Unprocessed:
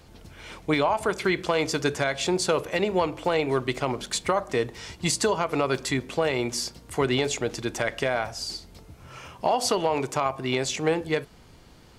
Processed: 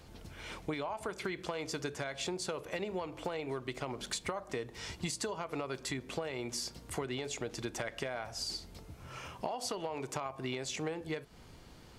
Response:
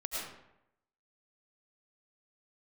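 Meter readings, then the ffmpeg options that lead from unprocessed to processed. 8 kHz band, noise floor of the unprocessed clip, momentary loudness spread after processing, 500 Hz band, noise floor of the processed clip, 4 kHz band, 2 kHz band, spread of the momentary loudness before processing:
-10.0 dB, -52 dBFS, 7 LU, -13.5 dB, -55 dBFS, -10.5 dB, -12.5 dB, 7 LU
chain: -af "acompressor=threshold=0.0282:ratio=10,volume=0.708"

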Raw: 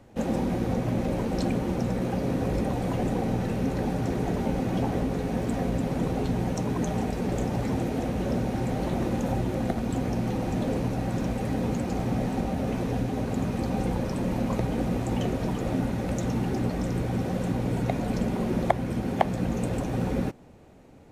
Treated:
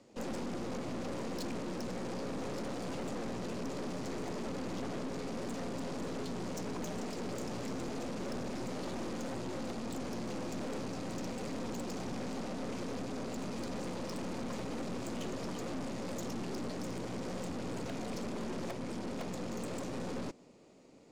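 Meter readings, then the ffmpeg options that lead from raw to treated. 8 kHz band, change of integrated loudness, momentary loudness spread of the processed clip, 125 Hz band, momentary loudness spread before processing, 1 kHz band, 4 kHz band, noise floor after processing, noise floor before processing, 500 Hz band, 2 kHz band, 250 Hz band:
-3.5 dB, -11.5 dB, 1 LU, -17.0 dB, 2 LU, -11.0 dB, -3.5 dB, -42 dBFS, -32 dBFS, -9.5 dB, -8.0 dB, -12.0 dB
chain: -af "highpass=220,equalizer=f=790:t=q:w=4:g=-7,equalizer=f=1600:t=q:w=4:g=-8,equalizer=f=4800:t=q:w=4:g=8,equalizer=f=7000:t=q:w=4:g=6,lowpass=f=9900:w=0.5412,lowpass=f=9900:w=1.3066,aeval=exprs='(tanh(70.8*val(0)+0.75)-tanh(0.75))/70.8':c=same"

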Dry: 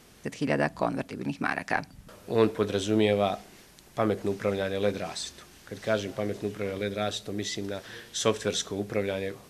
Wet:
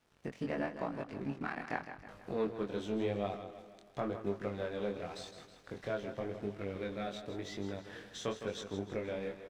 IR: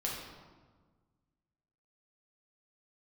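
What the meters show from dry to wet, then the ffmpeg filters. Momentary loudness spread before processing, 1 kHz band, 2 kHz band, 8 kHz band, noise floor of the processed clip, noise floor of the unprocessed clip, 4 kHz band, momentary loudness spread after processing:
12 LU, -9.5 dB, -11.0 dB, -17.5 dB, -59 dBFS, -54 dBFS, -14.0 dB, 11 LU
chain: -af "acompressor=threshold=0.00891:ratio=2,aeval=exprs='sgn(val(0))*max(abs(val(0))-0.00282,0)':c=same,aemphasis=mode=reproduction:type=75kf,aecho=1:1:160|320|480|640|800:0.316|0.158|0.0791|0.0395|0.0198,flanger=delay=20:depth=4.6:speed=0.92,volume=1.58"

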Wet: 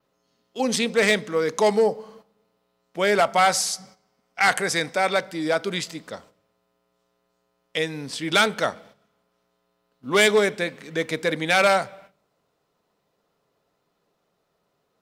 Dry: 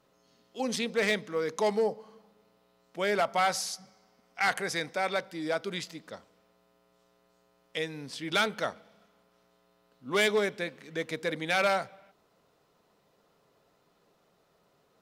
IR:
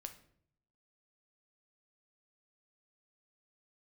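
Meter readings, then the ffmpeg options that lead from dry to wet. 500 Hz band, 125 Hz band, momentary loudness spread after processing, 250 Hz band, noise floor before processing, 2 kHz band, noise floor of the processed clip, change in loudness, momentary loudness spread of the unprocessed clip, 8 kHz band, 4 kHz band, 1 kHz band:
+8.0 dB, +8.0 dB, 15 LU, +8.0 dB, -69 dBFS, +8.0 dB, -73 dBFS, +8.0 dB, 17 LU, +10.5 dB, +8.0 dB, +8.0 dB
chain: -filter_complex "[0:a]agate=range=0.251:threshold=0.00158:ratio=16:detection=peak,adynamicequalizer=threshold=0.002:dfrequency=8100:dqfactor=2.9:tfrequency=8100:tqfactor=2.9:attack=5:release=100:ratio=0.375:range=3:mode=boostabove:tftype=bell,asplit=2[s0][s1];[1:a]atrim=start_sample=2205[s2];[s1][s2]afir=irnorm=-1:irlink=0,volume=0.355[s3];[s0][s3]amix=inputs=2:normalize=0,volume=2.11"

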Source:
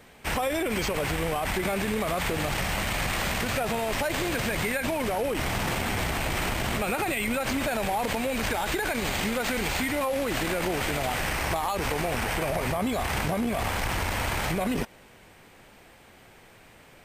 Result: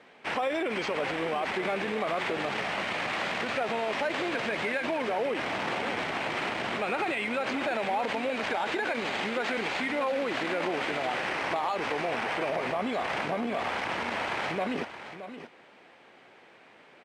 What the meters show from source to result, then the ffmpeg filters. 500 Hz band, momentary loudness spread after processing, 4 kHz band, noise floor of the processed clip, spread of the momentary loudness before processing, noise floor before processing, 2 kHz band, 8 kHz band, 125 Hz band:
-1.0 dB, 2 LU, -3.5 dB, -56 dBFS, 1 LU, -53 dBFS, -1.0 dB, -14.5 dB, -13.0 dB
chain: -af "highpass=270,lowpass=3600,aecho=1:1:622:0.266,volume=0.891"

